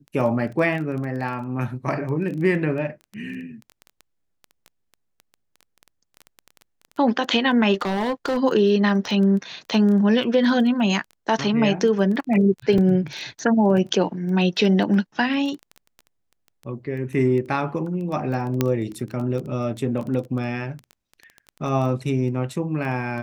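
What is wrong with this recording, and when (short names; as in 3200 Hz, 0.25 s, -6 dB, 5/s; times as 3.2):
crackle 10/s -29 dBFS
7.74–8.38 clipped -19.5 dBFS
12.78 gap 2.9 ms
18.61 pop -6 dBFS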